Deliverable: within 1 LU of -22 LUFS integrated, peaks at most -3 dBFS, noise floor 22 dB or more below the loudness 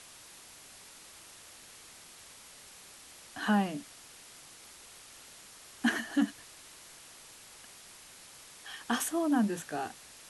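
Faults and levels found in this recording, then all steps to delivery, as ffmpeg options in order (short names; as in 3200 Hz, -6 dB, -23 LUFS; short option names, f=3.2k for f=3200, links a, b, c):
noise floor -53 dBFS; noise floor target -55 dBFS; loudness -32.5 LUFS; peak -16.5 dBFS; loudness target -22.0 LUFS
-> -af "afftdn=nr=6:nf=-53"
-af "volume=10.5dB"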